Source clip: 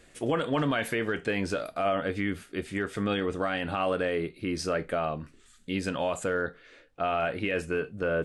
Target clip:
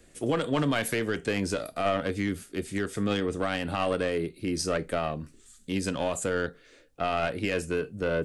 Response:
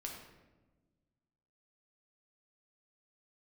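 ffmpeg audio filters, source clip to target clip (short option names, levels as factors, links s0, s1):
-filter_complex "[0:a]acrossover=split=270|540|5200[s0][s1][s2][s3];[s2]aeval=exprs='0.141*(cos(1*acos(clip(val(0)/0.141,-1,1)))-cos(1*PI/2))+0.01*(cos(3*acos(clip(val(0)/0.141,-1,1)))-cos(3*PI/2))+0.0126*(cos(4*acos(clip(val(0)/0.141,-1,1)))-cos(4*PI/2))+0.00631*(cos(7*acos(clip(val(0)/0.141,-1,1)))-cos(7*PI/2))':c=same[s4];[s3]dynaudnorm=f=160:g=3:m=2.11[s5];[s0][s1][s4][s5]amix=inputs=4:normalize=0,volume=1.19"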